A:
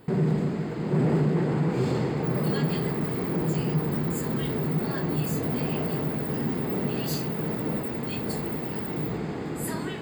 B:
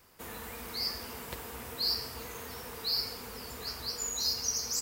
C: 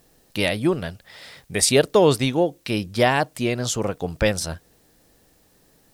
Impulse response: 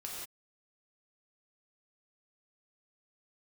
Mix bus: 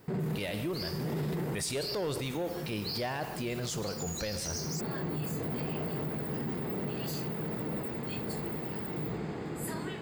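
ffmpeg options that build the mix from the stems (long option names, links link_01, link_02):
-filter_complex "[0:a]volume=-5dB[link_01];[1:a]volume=-5dB[link_02];[2:a]agate=range=-33dB:threshold=-51dB:ratio=3:detection=peak,asoftclip=type=tanh:threshold=-11dB,volume=-9dB,asplit=3[link_03][link_04][link_05];[link_04]volume=-8dB[link_06];[link_05]apad=whole_len=441701[link_07];[link_01][link_07]sidechaincompress=threshold=-41dB:ratio=8:attack=16:release=458[link_08];[3:a]atrim=start_sample=2205[link_09];[link_06][link_09]afir=irnorm=-1:irlink=0[link_10];[link_08][link_02][link_03][link_10]amix=inputs=4:normalize=0,equalizer=frequency=260:width_type=o:width=0.26:gain=-4,alimiter=level_in=2.5dB:limit=-24dB:level=0:latency=1:release=14,volume=-2.5dB"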